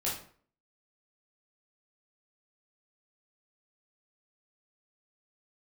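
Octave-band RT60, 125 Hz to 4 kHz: 0.55, 0.55, 0.50, 0.50, 0.45, 0.35 seconds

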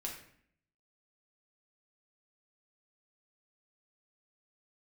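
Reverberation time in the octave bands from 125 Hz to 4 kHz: 0.90, 0.85, 0.65, 0.60, 0.65, 0.50 seconds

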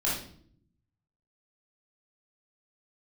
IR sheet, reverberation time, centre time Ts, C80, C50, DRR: non-exponential decay, 45 ms, 7.5 dB, 2.5 dB, −7.0 dB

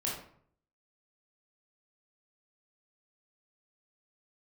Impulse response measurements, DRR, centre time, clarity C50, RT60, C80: −4.5 dB, 44 ms, 2.5 dB, 0.60 s, 7.5 dB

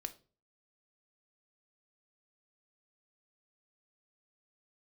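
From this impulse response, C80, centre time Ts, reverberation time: 22.5 dB, 5 ms, 0.40 s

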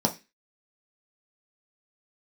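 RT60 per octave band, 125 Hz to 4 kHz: 0.30, 0.30, 0.25, 0.20, 0.35, 0.30 seconds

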